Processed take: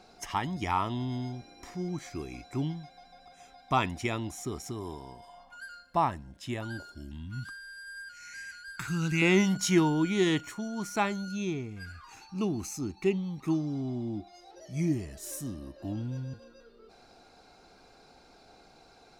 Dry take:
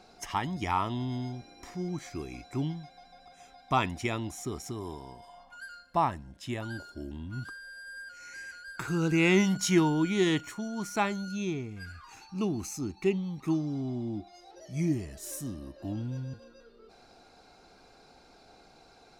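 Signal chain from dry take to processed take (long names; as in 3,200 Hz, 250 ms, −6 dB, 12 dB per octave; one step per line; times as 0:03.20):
0:06.95–0:09.22: drawn EQ curve 200 Hz 0 dB, 430 Hz −14 dB, 1,900 Hz +2 dB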